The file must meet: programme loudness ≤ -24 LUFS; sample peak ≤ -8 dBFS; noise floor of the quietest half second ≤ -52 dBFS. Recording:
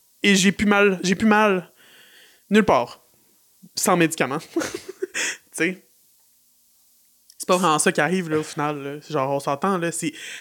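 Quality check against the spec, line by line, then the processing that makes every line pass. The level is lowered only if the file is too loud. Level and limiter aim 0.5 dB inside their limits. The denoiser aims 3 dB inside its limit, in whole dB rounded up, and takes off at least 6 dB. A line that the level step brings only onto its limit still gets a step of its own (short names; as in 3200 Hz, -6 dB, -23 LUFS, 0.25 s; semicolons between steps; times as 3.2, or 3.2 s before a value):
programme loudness -21.0 LUFS: fail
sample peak -5.5 dBFS: fail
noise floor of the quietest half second -60 dBFS: OK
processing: gain -3.5 dB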